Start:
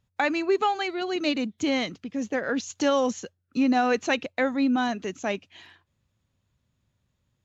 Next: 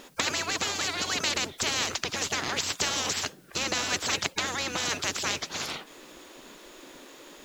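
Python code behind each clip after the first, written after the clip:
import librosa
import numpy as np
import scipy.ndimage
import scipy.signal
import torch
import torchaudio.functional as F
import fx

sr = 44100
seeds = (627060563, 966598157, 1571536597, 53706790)

y = fx.spec_gate(x, sr, threshold_db=-15, keep='weak')
y = fx.peak_eq(y, sr, hz=330.0, db=6.5, octaves=1.1)
y = fx.spectral_comp(y, sr, ratio=4.0)
y = y * librosa.db_to_amplitude(8.0)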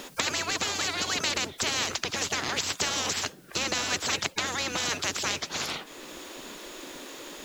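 y = fx.band_squash(x, sr, depth_pct=40)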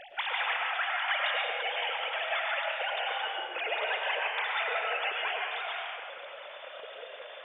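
y = fx.sine_speech(x, sr)
y = fx.rev_freeverb(y, sr, rt60_s=1.8, hf_ratio=0.65, predelay_ms=65, drr_db=-1.5)
y = y * librosa.db_to_amplitude(-5.5)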